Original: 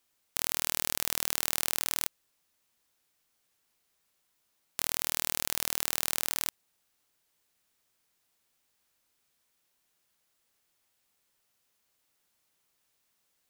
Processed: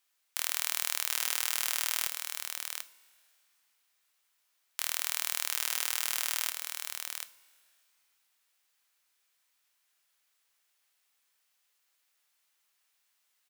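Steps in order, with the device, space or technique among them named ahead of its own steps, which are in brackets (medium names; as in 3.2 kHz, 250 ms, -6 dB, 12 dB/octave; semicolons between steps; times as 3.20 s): delay 741 ms -5.5 dB; two-slope reverb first 0.4 s, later 2.7 s, from -16 dB, DRR 11.5 dB; filter by subtraction (in parallel: low-pass 1.7 kHz 12 dB/octave + polarity flip); on the sum: trim -1.5 dB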